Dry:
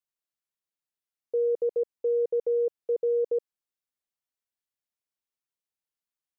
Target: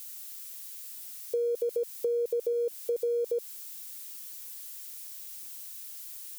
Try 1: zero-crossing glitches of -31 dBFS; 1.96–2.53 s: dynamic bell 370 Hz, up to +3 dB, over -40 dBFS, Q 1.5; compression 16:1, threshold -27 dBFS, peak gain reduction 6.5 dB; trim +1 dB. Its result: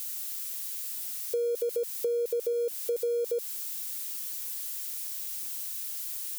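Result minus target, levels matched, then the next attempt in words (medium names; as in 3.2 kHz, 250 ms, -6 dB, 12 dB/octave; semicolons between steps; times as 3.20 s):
zero-crossing glitches: distortion +7 dB
zero-crossing glitches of -38 dBFS; 1.96–2.53 s: dynamic bell 370 Hz, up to +3 dB, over -40 dBFS, Q 1.5; compression 16:1, threshold -27 dBFS, peak gain reduction 6.5 dB; trim +1 dB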